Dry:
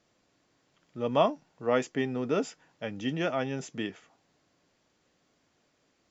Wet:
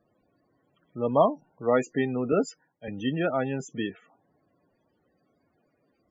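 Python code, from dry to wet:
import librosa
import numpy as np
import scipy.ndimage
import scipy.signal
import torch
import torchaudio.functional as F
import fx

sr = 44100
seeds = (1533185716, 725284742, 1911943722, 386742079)

y = fx.spec_topn(x, sr, count=32)
y = fx.band_widen(y, sr, depth_pct=100, at=(2.32, 2.88))
y = y * librosa.db_to_amplitude(3.5)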